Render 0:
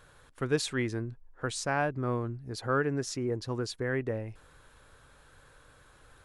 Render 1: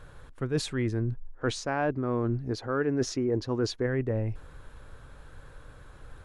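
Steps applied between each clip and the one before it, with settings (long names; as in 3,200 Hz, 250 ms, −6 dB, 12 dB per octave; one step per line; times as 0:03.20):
gain on a spectral selection 0:01.41–0:03.86, 220–7,000 Hz +7 dB
spectral tilt −2 dB per octave
reversed playback
downward compressor 8 to 1, threshold −29 dBFS, peak gain reduction 14.5 dB
reversed playback
level +4.5 dB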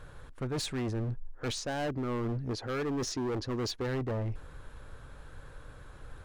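hard clipping −30 dBFS, distortion −7 dB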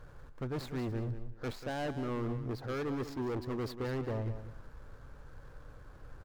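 running median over 15 samples
repeating echo 190 ms, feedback 22%, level −11 dB
level −3 dB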